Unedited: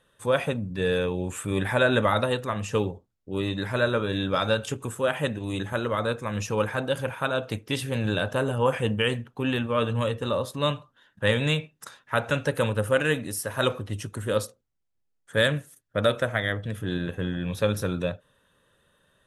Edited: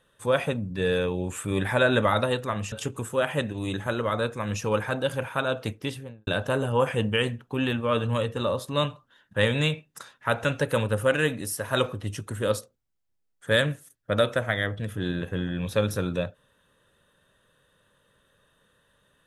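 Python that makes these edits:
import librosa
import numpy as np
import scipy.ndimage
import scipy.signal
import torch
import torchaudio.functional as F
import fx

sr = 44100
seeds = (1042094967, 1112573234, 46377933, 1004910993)

y = fx.studio_fade_out(x, sr, start_s=7.56, length_s=0.57)
y = fx.edit(y, sr, fx.cut(start_s=2.72, length_s=1.86), tone=tone)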